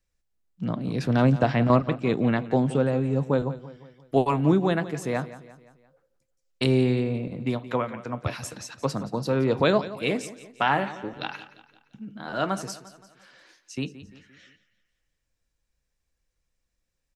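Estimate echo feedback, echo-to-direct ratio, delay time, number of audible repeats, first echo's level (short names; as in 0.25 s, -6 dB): 48%, -14.5 dB, 0.173 s, 4, -15.5 dB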